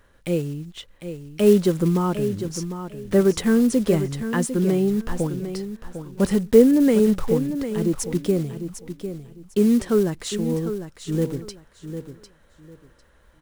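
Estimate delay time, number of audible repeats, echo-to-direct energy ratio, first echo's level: 0.751 s, 2, -10.0 dB, -10.0 dB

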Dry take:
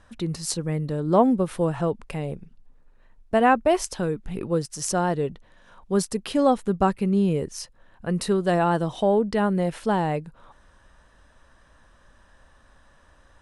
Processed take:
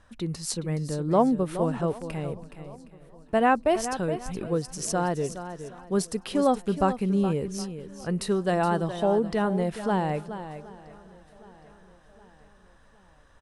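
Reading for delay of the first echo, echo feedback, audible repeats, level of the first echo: 0.42 s, no steady repeat, 5, -11.0 dB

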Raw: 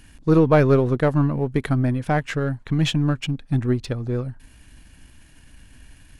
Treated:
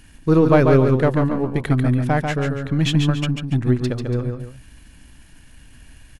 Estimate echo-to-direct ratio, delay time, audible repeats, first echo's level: -4.5 dB, 0.142 s, 2, -5.0 dB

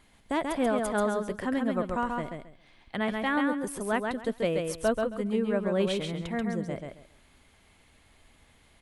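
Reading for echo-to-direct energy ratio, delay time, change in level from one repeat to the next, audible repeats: -4.0 dB, 0.135 s, -13.5 dB, 3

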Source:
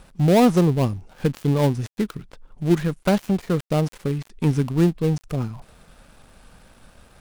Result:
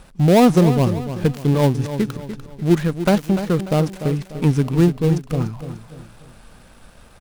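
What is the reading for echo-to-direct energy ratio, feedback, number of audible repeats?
-10.0 dB, 41%, 4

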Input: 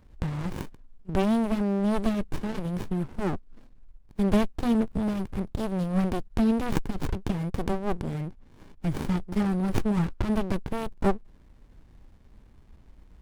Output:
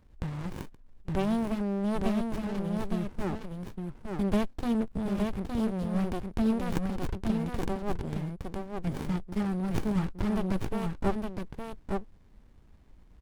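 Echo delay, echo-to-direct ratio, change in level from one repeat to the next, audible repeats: 0.864 s, -4.0 dB, no steady repeat, 1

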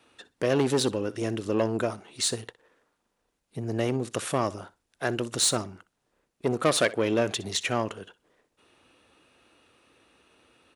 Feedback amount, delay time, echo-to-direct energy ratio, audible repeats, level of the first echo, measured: 17%, 62 ms, -19.5 dB, 2, -19.5 dB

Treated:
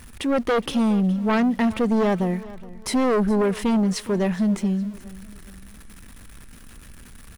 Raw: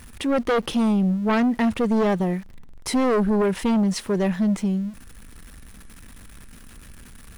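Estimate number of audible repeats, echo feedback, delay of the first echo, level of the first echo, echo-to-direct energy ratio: 2, 37%, 0.416 s, -19.0 dB, -18.5 dB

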